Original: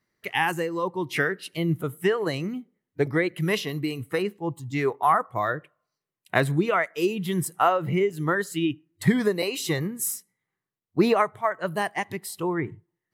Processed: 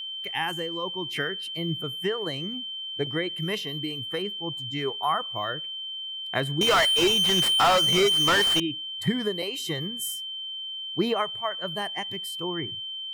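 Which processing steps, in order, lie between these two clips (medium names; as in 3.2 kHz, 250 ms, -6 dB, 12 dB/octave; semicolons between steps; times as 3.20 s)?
whistle 3.1 kHz -27 dBFS; 6.61–8.60 s: overdrive pedal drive 38 dB, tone 2.7 kHz, clips at -7 dBFS; trim -5.5 dB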